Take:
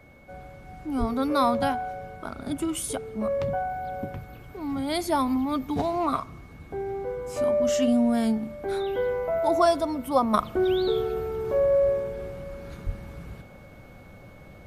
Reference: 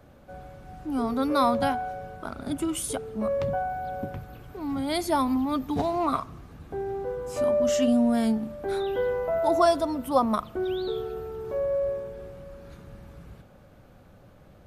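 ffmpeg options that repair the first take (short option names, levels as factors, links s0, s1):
-filter_complex "[0:a]bandreject=f=2200:w=30,asplit=3[s0][s1][s2];[s0]afade=t=out:st=0.99:d=0.02[s3];[s1]highpass=f=140:w=0.5412,highpass=f=140:w=1.3066,afade=t=in:st=0.99:d=0.02,afade=t=out:st=1.11:d=0.02[s4];[s2]afade=t=in:st=1.11:d=0.02[s5];[s3][s4][s5]amix=inputs=3:normalize=0,asplit=3[s6][s7][s8];[s6]afade=t=out:st=12.85:d=0.02[s9];[s7]highpass=f=140:w=0.5412,highpass=f=140:w=1.3066,afade=t=in:st=12.85:d=0.02,afade=t=out:st=12.97:d=0.02[s10];[s8]afade=t=in:st=12.97:d=0.02[s11];[s9][s10][s11]amix=inputs=3:normalize=0,asetnsamples=n=441:p=0,asendcmd='10.34 volume volume -5.5dB',volume=1"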